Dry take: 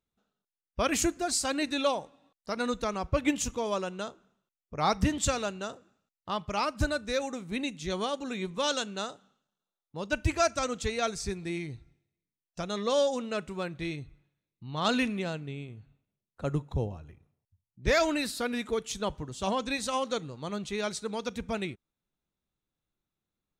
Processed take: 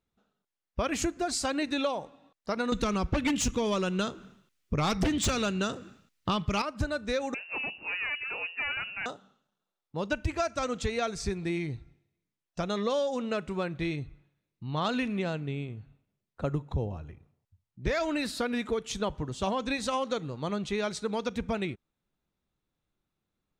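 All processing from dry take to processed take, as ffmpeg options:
ffmpeg -i in.wav -filter_complex "[0:a]asettb=1/sr,asplit=3[link_01][link_02][link_03];[link_01]atrim=end=2.724[link_04];[link_02]atrim=start=2.72:end=6.62,asetpts=PTS-STARTPTS,afade=type=in:duration=0.004:curve=qsin,afade=type=out:start_time=3.896:duration=0.004:curve=qsin,equalizer=frequency=740:width_type=o:width=1.6:gain=-10.5,aeval=exprs='0.188*sin(PI/2*3.55*val(0)/0.188)':channel_layout=same[link_05];[link_03]atrim=start=6.616[link_06];[link_04][link_05]acrossfade=duration=0.004:curve1=hsin:curve2=qsin[link_07];[link_07][link_06]acrossfade=duration=0.004:curve1=qsin:curve2=hsin,asettb=1/sr,asplit=3[link_08][link_09][link_10];[link_08]atrim=end=7.344[link_11];[link_09]atrim=start=7.34:end=9.06,asetpts=PTS-STARTPTS,afade=type=in:duration=0.004:curve=qsin,afade=type=out:start_time=1.716:duration=0.004:curve=qsin,highpass=220,aeval=exprs='(tanh(35.5*val(0)+0.35)-tanh(0.35))/35.5':channel_layout=same,lowpass=frequency=2500:width_type=q:width=0.5098,lowpass=frequency=2500:width_type=q:width=0.6013,lowpass=frequency=2500:width_type=q:width=0.9,lowpass=frequency=2500:width_type=q:width=2.563,afreqshift=-2900[link_12];[link_10]atrim=start=9.056[link_13];[link_11][link_12]acrossfade=duration=0.004:curve1=hsin:curve2=qsin[link_14];[link_14][link_13]acrossfade=duration=0.004:curve1=qsin:curve2=hsin,lowpass=frequency=3600:poles=1,acompressor=threshold=-31dB:ratio=6,volume=5dB" out.wav

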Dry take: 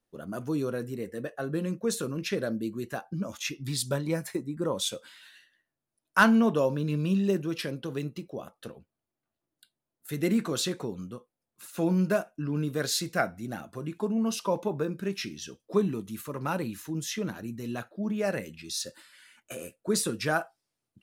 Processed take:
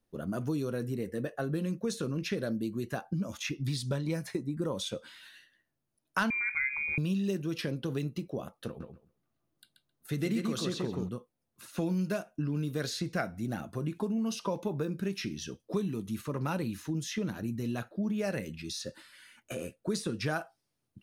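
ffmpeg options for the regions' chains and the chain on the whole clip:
ffmpeg -i in.wav -filter_complex "[0:a]asettb=1/sr,asplit=3[link_01][link_02][link_03];[link_01]atrim=end=6.304[link_04];[link_02]atrim=start=6.3:end=6.98,asetpts=PTS-STARTPTS,afade=type=in:duration=0.004:curve=qsin,afade=type=out:start_time=0.676:duration=0.004:curve=qsin,lowpass=frequency=2200:width_type=q:width=0.5098,lowpass=frequency=2200:width_type=q:width=0.6013,lowpass=frequency=2200:width_type=q:width=0.9,lowpass=frequency=2200:width_type=q:width=2.563,afreqshift=-2600,aemphasis=mode=reproduction:type=75kf[link_05];[link_03]atrim=start=6.976[link_06];[link_04][link_05]acrossfade=duration=0.004:curve1=hsin:curve2=qsin[link_07];[link_07][link_06]acrossfade=duration=0.004:curve1=qsin:curve2=hsin,asettb=1/sr,asplit=3[link_08][link_09][link_10];[link_08]atrim=end=8.674[link_11];[link_09]atrim=start=8.67:end=11.09,asetpts=PTS-STARTPTS,afade=type=in:duration=0.004:curve=qsin,afade=type=out:start_time=2.416:duration=0.004:curve=qsin,equalizer=frequency=1200:width_type=o:width=0.22:gain=4.5,deesser=0.35,asplit=2[link_12][link_13];[link_13]adelay=132,lowpass=frequency=4700:poles=1,volume=-3.5dB,asplit=2[link_14][link_15];[link_15]adelay=132,lowpass=frequency=4700:poles=1,volume=0.16,asplit=2[link_16][link_17];[link_17]adelay=132,lowpass=frequency=4700:poles=1,volume=0.16[link_18];[link_12][link_14][link_16][link_18]amix=inputs=4:normalize=0,atrim=end_sample=106722[link_19];[link_10]atrim=start=11.086[link_20];[link_11][link_19]acrossfade=duration=0.004:curve1=hsin:curve2=qsin[link_21];[link_21][link_20]acrossfade=duration=0.004:curve1=qsin:curve2=hsin,lowshelf=frequency=290:gain=7.5,bandreject=frequency=7500:width=11,acrossover=split=2500|7900[link_22][link_23][link_24];[link_22]acompressor=threshold=-30dB:ratio=4[link_25];[link_23]acompressor=threshold=-39dB:ratio=4[link_26];[link_24]acompressor=threshold=-57dB:ratio=4[link_27];[link_25][link_26][link_27]amix=inputs=3:normalize=0" out.wav

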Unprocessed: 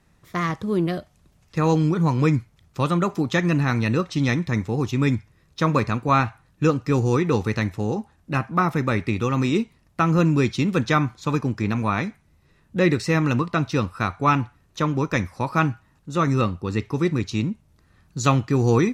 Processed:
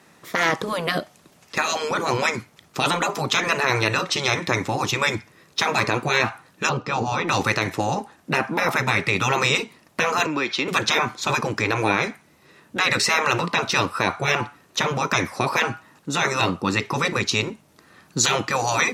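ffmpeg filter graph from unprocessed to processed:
ffmpeg -i in.wav -filter_complex "[0:a]asettb=1/sr,asplit=3[link_01][link_02][link_03];[link_01]atrim=end=6.694[link_04];[link_02]atrim=start=6.69:end=7.28,asetpts=PTS-STARTPTS,afade=type=in:duration=0.004:curve=qsin,afade=type=out:start_time=0.586:duration=0.004:curve=qsin,lowpass=3500,equalizer=frequency=1900:width_type=o:width=0.7:gain=-8[link_05];[link_03]atrim=start=7.276[link_06];[link_04][link_05]acrossfade=duration=0.004:curve1=hsin:curve2=qsin[link_07];[link_07][link_06]acrossfade=duration=0.004:curve1=qsin:curve2=hsin,asettb=1/sr,asplit=3[link_08][link_09][link_10];[link_08]atrim=end=10.264[link_11];[link_09]atrim=start=10.26:end=10.68,asetpts=PTS-STARTPTS,afade=type=in:duration=0.004:curve=qsin,afade=type=out:start_time=0.416:duration=0.004:curve=qsin,acrossover=split=430 4900:gain=0.158 1 0.141[link_12][link_13][link_14];[link_12][link_13][link_14]amix=inputs=3:normalize=0,acompressor=threshold=-32dB:ratio=2.5:attack=3.2:release=140:knee=1:detection=peak[link_15];[link_10]atrim=start=10.676[link_16];[link_11][link_15]acrossfade=duration=0.004:curve1=hsin:curve2=qsin[link_17];[link_17][link_16]acrossfade=duration=0.004:curve1=qsin:curve2=hsin,highpass=270,afftfilt=real='re*lt(hypot(re,im),0.178)':imag='im*lt(hypot(re,im),0.178)':win_size=1024:overlap=0.75,alimiter=level_in=17.5dB:limit=-1dB:release=50:level=0:latency=1,volume=-5dB" out.wav

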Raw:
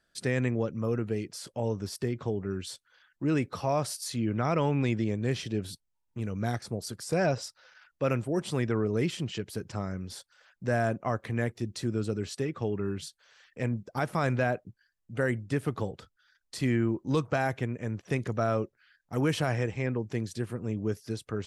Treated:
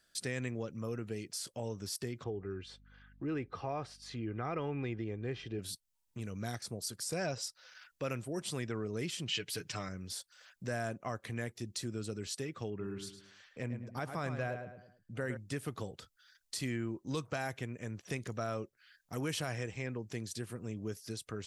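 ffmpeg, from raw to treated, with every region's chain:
ffmpeg -i in.wav -filter_complex "[0:a]asettb=1/sr,asplit=3[link_01][link_02][link_03];[link_01]atrim=end=2.244[link_04];[link_02]atrim=start=2.24:end=5.59,asetpts=PTS-STARTPTS,afade=type=in:duration=0.004:curve=qsin,afade=type=out:start_time=3.346:duration=0.004:curve=qsin,lowpass=2100,aecho=1:1:2.5:0.38,atrim=end_sample=147735,aeval=exprs='val(0)+0.00141*(sin(2*PI*50*n/s)+sin(2*PI*2*50*n/s)/2+sin(2*PI*3*50*n/s)/3+sin(2*PI*4*50*n/s)/4+sin(2*PI*5*50*n/s)/5)':channel_layout=same[link_05];[link_03]atrim=start=5.586[link_06];[link_04][link_05]acrossfade=duration=0.004:curve1=hsin:curve2=qsin[link_07];[link_07][link_06]acrossfade=duration=0.004:curve1=qsin:curve2=hsin,asettb=1/sr,asplit=3[link_08][link_09][link_10];[link_08]atrim=end=9.284[link_11];[link_09]atrim=start=9.28:end=9.89,asetpts=PTS-STARTPTS,afade=type=in:duration=0.004:curve=qsin,afade=type=out:start_time=0.606:duration=0.004:curve=qsin,equalizer=frequency=2600:width=0.73:gain=10.5,aecho=1:1:6.7:0.52,atrim=end_sample=26901[link_12];[link_10]atrim=start=9.886[link_13];[link_11][link_12]acrossfade=duration=0.004:curve1=hsin:curve2=qsin[link_14];[link_14][link_13]acrossfade=duration=0.004:curve1=qsin:curve2=hsin,asettb=1/sr,asplit=3[link_15][link_16][link_17];[link_15]atrim=end=12.704[link_18];[link_16]atrim=start=12.7:end=15.37,asetpts=PTS-STARTPTS,afade=type=in:duration=0.004:curve=qsin,afade=type=out:start_time=2.666:duration=0.004:curve=qsin,highshelf=frequency=2900:gain=-9,asplit=2[link_19][link_20];[link_20]adelay=107,lowpass=frequency=3600:poles=1,volume=-8dB,asplit=2[link_21][link_22];[link_22]adelay=107,lowpass=frequency=3600:poles=1,volume=0.33,asplit=2[link_23][link_24];[link_24]adelay=107,lowpass=frequency=3600:poles=1,volume=0.33,asplit=2[link_25][link_26];[link_26]adelay=107,lowpass=frequency=3600:poles=1,volume=0.33[link_27];[link_19][link_21][link_23][link_25][link_27]amix=inputs=5:normalize=0,atrim=end_sample=117747[link_28];[link_17]atrim=start=15.366[link_29];[link_18][link_28]acrossfade=duration=0.004:curve1=hsin:curve2=qsin[link_30];[link_30][link_29]acrossfade=duration=0.004:curve1=qsin:curve2=hsin,highshelf=frequency=2800:gain=11.5,bandreject=frequency=860:width=24,acompressor=threshold=-45dB:ratio=1.5,volume=-2.5dB" out.wav

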